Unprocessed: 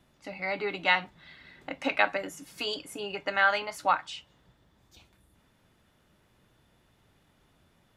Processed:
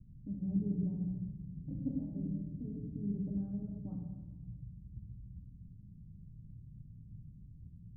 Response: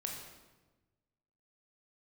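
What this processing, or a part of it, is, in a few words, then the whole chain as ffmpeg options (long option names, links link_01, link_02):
club heard from the street: -filter_complex "[0:a]alimiter=limit=-14.5dB:level=0:latency=1:release=189,lowpass=frequency=170:width=0.5412,lowpass=frequency=170:width=1.3066[link_01];[1:a]atrim=start_sample=2205[link_02];[link_01][link_02]afir=irnorm=-1:irlink=0,volume=16.5dB"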